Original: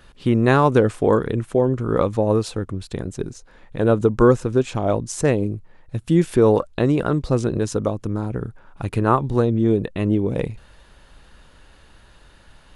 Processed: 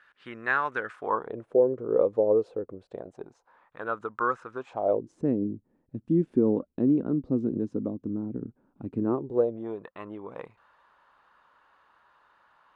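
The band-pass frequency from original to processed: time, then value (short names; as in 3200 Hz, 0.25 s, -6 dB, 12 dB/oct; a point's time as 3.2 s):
band-pass, Q 3.1
0.9 s 1600 Hz
1.5 s 480 Hz
2.69 s 480 Hz
3.84 s 1300 Hz
4.53 s 1300 Hz
5.17 s 260 Hz
9.04 s 260 Hz
9.8 s 1100 Hz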